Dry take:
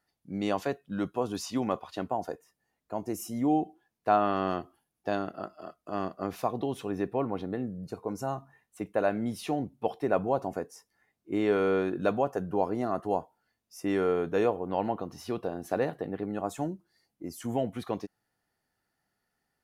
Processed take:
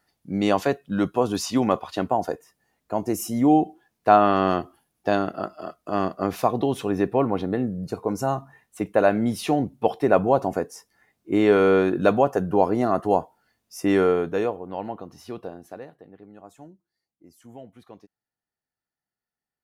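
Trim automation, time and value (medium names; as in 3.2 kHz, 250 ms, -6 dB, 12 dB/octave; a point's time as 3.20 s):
14.00 s +8.5 dB
14.64 s -2 dB
15.48 s -2 dB
15.88 s -13 dB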